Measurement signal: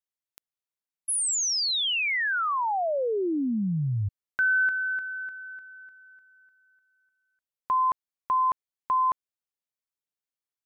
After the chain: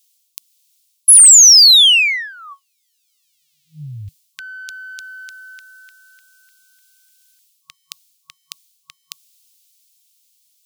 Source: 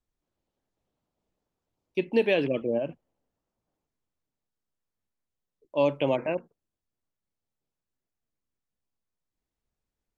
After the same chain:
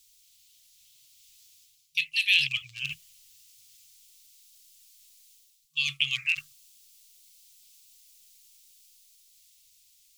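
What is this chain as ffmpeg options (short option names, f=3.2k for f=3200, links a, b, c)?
-af "areverse,acompressor=threshold=-34dB:ratio=10:attack=0.13:release=691:knee=6:detection=peak,areverse,aexciter=amount=12:drive=9.7:freq=2.4k,aeval=exprs='0.841*(cos(1*acos(clip(val(0)/0.841,-1,1)))-cos(1*PI/2))+0.0335*(cos(5*acos(clip(val(0)/0.841,-1,1)))-cos(5*PI/2))':c=same,dynaudnorm=f=120:g=21:m=4.5dB,afftfilt=real='re*(1-between(b*sr/4096,160,1100))':imag='im*(1-between(b*sr/4096,160,1100))':win_size=4096:overlap=0.75"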